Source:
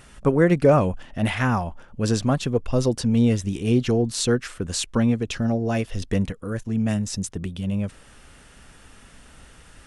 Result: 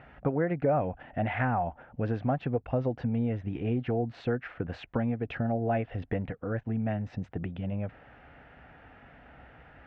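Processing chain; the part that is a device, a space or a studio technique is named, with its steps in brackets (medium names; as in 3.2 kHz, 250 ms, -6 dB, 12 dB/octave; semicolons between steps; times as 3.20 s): bass amplifier (compression 4:1, threshold -24 dBFS, peak gain reduction 11 dB; cabinet simulation 71–2200 Hz, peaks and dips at 89 Hz -4 dB, 200 Hz -7 dB, 380 Hz -5 dB, 740 Hz +8 dB, 1.1 kHz -7 dB)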